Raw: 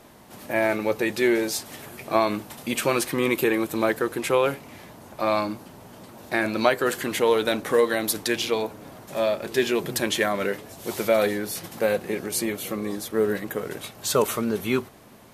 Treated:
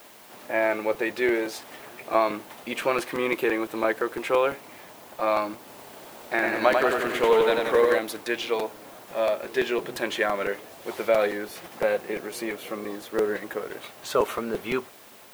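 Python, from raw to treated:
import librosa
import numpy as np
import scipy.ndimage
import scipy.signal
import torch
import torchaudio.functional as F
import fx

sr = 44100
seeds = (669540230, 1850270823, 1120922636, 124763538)

y = fx.dmg_noise_colour(x, sr, seeds[0], colour='blue', level_db=-40.0)
y = fx.bass_treble(y, sr, bass_db=-14, treble_db=-13)
y = fx.buffer_crackle(y, sr, first_s=0.94, period_s=0.17, block=256, kind='repeat')
y = fx.echo_warbled(y, sr, ms=92, feedback_pct=63, rate_hz=2.8, cents=50, wet_db=-4, at=(5.58, 7.99))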